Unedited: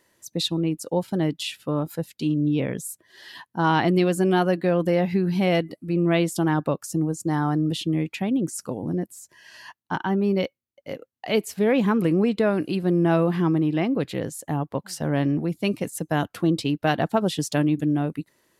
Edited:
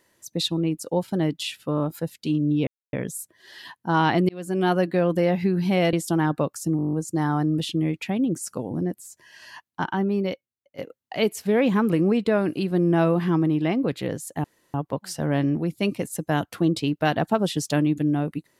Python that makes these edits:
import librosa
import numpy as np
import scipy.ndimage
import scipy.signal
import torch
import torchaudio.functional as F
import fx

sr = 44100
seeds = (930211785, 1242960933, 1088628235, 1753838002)

y = fx.edit(x, sr, fx.stutter(start_s=1.76, slice_s=0.02, count=3),
    fx.insert_silence(at_s=2.63, length_s=0.26),
    fx.fade_in_span(start_s=3.99, length_s=0.43),
    fx.cut(start_s=5.63, length_s=0.58),
    fx.stutter(start_s=7.05, slice_s=0.02, count=9),
    fx.fade_out_to(start_s=10.03, length_s=0.87, floor_db=-11.5),
    fx.insert_room_tone(at_s=14.56, length_s=0.3), tone=tone)